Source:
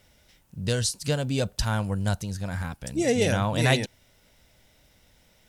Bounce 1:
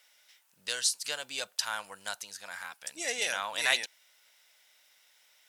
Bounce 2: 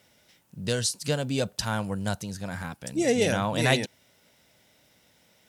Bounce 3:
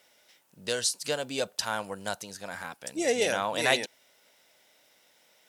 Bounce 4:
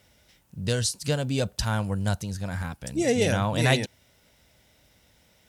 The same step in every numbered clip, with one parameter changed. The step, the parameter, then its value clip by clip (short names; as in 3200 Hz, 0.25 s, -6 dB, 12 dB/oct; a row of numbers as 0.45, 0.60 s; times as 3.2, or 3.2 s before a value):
HPF, cutoff: 1200, 140, 430, 50 Hz